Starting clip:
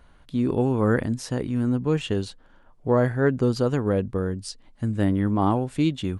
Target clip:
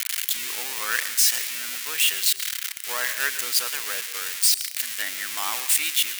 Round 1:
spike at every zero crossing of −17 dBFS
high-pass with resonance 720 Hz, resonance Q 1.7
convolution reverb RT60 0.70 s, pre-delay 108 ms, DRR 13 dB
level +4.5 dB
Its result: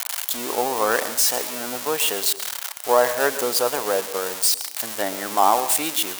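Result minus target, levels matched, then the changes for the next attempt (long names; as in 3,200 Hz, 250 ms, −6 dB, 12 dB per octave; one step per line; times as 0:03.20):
1,000 Hz band +12.5 dB
change: high-pass with resonance 2,000 Hz, resonance Q 1.7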